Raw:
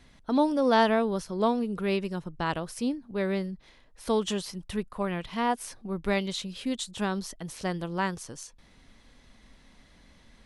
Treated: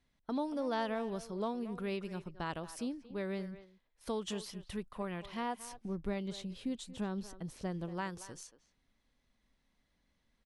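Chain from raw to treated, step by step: gate -46 dBFS, range -13 dB; 5.72–7.89 s: tilt shelf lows +5 dB, about 700 Hz; compression 2:1, threshold -28 dBFS, peak gain reduction 6.5 dB; speakerphone echo 230 ms, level -13 dB; trim -7.5 dB

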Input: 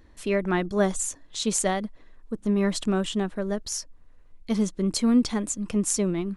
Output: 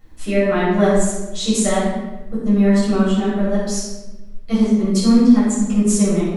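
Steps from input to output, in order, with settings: transient shaper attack +1 dB, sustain -11 dB; word length cut 12-bit, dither none; simulated room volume 570 m³, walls mixed, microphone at 6.6 m; trim -6 dB

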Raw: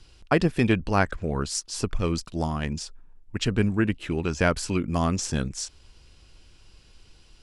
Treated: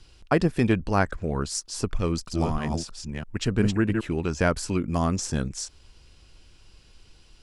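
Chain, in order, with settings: 1.93–4.01 s: chunks repeated in reverse 327 ms, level -4 dB; dynamic bell 2.9 kHz, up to -5 dB, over -42 dBFS, Q 1.2

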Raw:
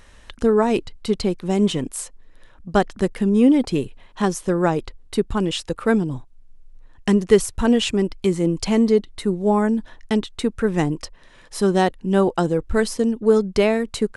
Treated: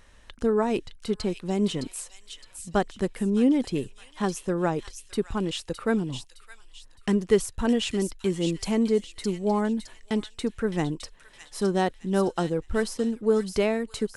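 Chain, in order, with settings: feedback echo behind a high-pass 613 ms, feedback 36%, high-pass 2.8 kHz, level -4.5 dB; trim -6.5 dB

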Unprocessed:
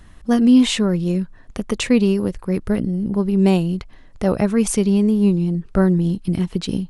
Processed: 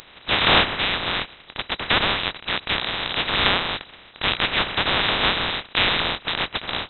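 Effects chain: spectral contrast reduction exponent 0.11; frequency inversion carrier 3.9 kHz

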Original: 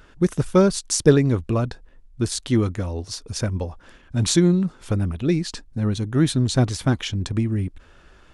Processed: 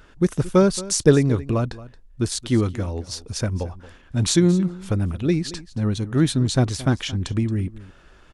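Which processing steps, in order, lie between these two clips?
delay 225 ms -18 dB

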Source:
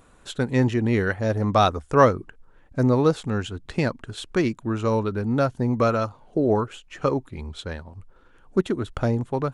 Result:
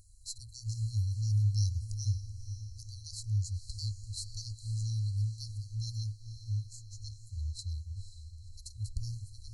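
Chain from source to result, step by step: echo that smears into a reverb 509 ms, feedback 51%, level -11 dB; FFT band-reject 110–4000 Hz

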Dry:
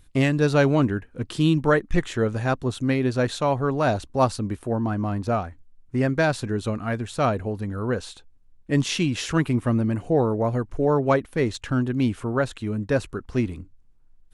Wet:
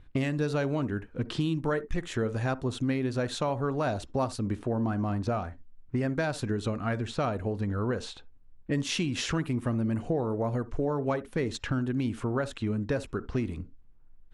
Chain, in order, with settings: level-controlled noise filter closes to 2.3 kHz, open at -19.5 dBFS; compression, threshold -27 dBFS, peak gain reduction 12.5 dB; on a send: reverberation, pre-delay 46 ms, DRR 18 dB; on the sum: trim +1 dB

